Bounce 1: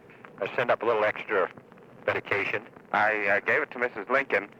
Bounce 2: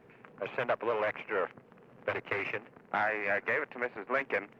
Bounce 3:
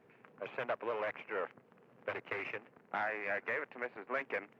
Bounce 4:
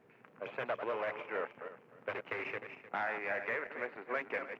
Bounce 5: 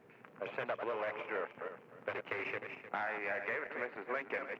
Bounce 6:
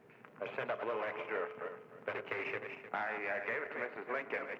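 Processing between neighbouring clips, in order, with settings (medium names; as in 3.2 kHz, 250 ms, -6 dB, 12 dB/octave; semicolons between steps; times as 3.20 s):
tone controls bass +1 dB, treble -4 dB; trim -6.5 dB
bass shelf 71 Hz -11.5 dB; trim -6 dB
backward echo that repeats 153 ms, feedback 42%, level -8 dB
compression 2:1, threshold -40 dBFS, peak gain reduction 5.5 dB; trim +3 dB
reverberation RT60 0.85 s, pre-delay 4 ms, DRR 12.5 dB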